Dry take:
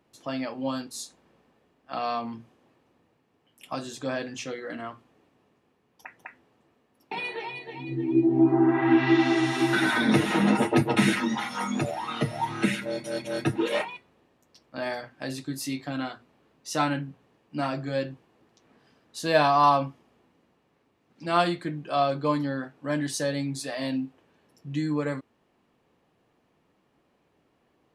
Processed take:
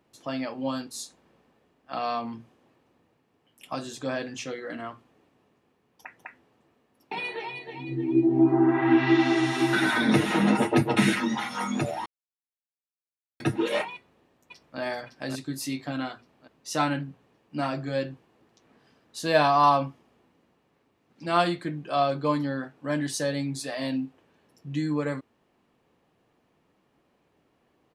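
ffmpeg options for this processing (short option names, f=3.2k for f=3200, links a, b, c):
-filter_complex "[0:a]asplit=2[a][b];[b]afade=t=in:st=13.94:d=0.01,afade=t=out:st=14.79:d=0.01,aecho=0:1:560|1120|1680|2240|2800|3360:0.707946|0.318576|0.143359|0.0645116|0.0290302|0.0130636[c];[a][c]amix=inputs=2:normalize=0,asplit=3[d][e][f];[d]atrim=end=12.06,asetpts=PTS-STARTPTS,afade=t=out:st=12.056:d=0.004:c=hsin[g];[e]atrim=start=12.06:end=13.4,asetpts=PTS-STARTPTS,volume=0[h];[f]atrim=start=13.4,asetpts=PTS-STARTPTS,afade=t=in:d=0.004:c=hsin[i];[g][h][i]concat=n=3:v=0:a=1"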